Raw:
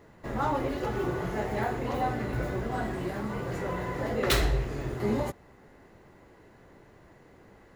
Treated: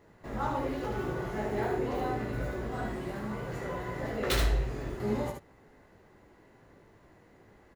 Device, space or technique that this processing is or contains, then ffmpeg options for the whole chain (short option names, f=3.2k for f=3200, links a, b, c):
slapback doubling: -filter_complex "[0:a]asettb=1/sr,asplit=3[a][b][c];[a]atrim=end=1.464[d];[b]atrim=start=1.46:end=2.17,asetpts=PTS-STARTPTS,afade=t=in:d=0.004:c=qsin,afade=t=out:st=0.706:d=0.004:c=qsin,equalizer=f=380:t=o:w=0.53:g=8[e];[c]atrim=start=2.166[f];[d][e]acrossfade=d=0.004:c1=hsin:c2=qsin[g];[g][f]acrossfade=d=0.004:c1=qsin:c2=hsin,asplit=3[h][i][j];[i]adelay=19,volume=-6.5dB[k];[j]adelay=75,volume=-4dB[l];[h][k][l]amix=inputs=3:normalize=0,volume=-5.5dB"